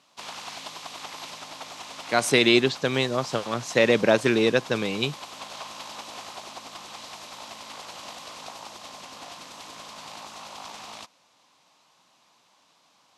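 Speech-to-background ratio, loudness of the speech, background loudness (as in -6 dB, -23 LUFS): 17.0 dB, -22.5 LUFS, -39.5 LUFS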